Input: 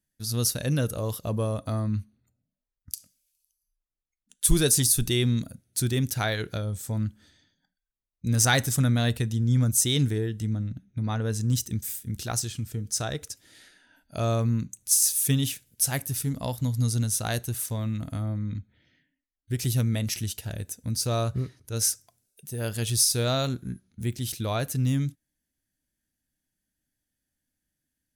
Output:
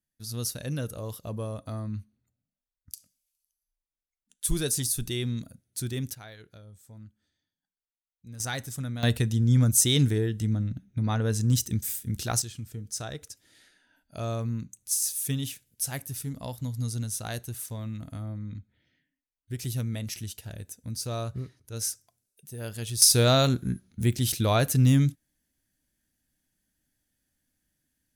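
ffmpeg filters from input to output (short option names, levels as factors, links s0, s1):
-af "asetnsamples=n=441:p=0,asendcmd='6.15 volume volume -19dB;8.4 volume volume -11dB;9.03 volume volume 1.5dB;12.42 volume volume -6dB;23.02 volume volume 5dB',volume=0.473"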